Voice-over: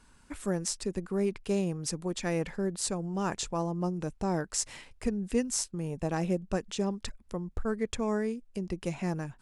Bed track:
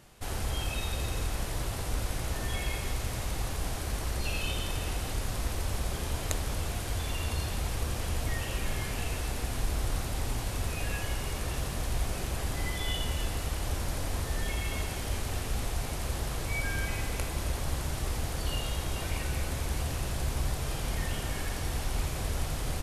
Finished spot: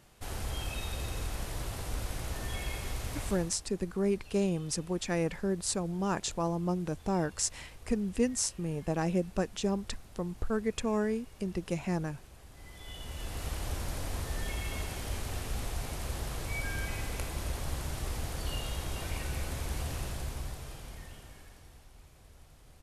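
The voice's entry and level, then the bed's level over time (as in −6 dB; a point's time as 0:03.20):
2.85 s, 0.0 dB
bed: 0:03.29 −4 dB
0:03.65 −20.5 dB
0:12.50 −20.5 dB
0:13.47 −3.5 dB
0:20.01 −3.5 dB
0:21.93 −24.5 dB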